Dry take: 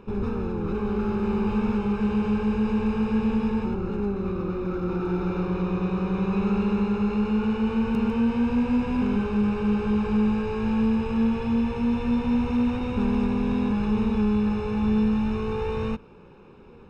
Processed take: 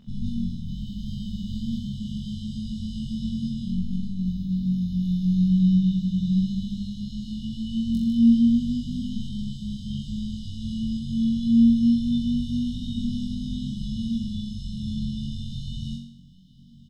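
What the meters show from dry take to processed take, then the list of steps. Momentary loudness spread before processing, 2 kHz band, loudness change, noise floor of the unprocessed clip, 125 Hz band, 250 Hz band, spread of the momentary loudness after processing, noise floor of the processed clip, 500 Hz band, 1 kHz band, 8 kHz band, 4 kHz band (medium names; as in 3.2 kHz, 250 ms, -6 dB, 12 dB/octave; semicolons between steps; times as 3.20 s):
5 LU, under -40 dB, -1.0 dB, -48 dBFS, +1.5 dB, -0.5 dB, 14 LU, -45 dBFS, under -35 dB, under -40 dB, no reading, +5.0 dB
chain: brick-wall FIR band-stop 260–2900 Hz; bass shelf 210 Hz -6 dB; comb 7 ms, depth 41%; on a send: flutter echo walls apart 3.7 m, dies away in 0.62 s; on the sum: trim +2.5 dB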